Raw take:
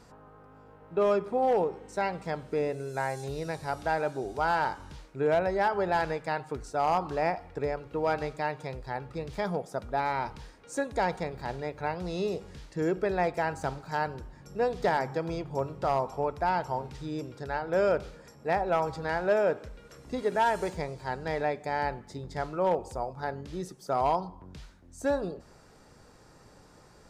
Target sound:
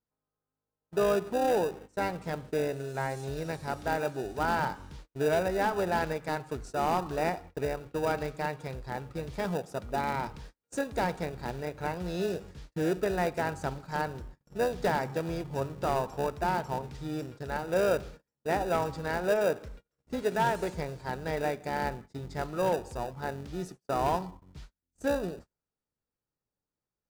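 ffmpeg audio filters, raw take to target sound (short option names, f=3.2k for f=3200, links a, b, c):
-filter_complex "[0:a]asplit=2[a][b];[b]acrusher=samples=41:mix=1:aa=0.000001,volume=-8.5dB[c];[a][c]amix=inputs=2:normalize=0,agate=range=-37dB:threshold=-43dB:ratio=16:detection=peak,volume=-2dB"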